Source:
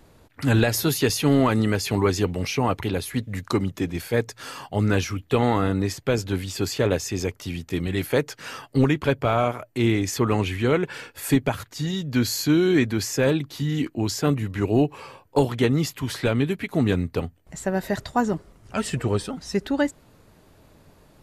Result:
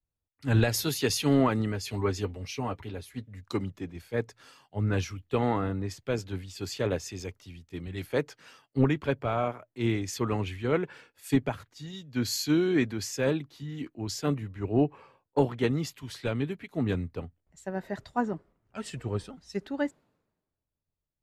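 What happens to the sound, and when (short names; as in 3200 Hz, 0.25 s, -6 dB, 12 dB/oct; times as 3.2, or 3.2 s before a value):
1.72–3.41 notch comb 170 Hz
whole clip: high shelf 8200 Hz -9.5 dB; three-band expander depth 100%; gain -7.5 dB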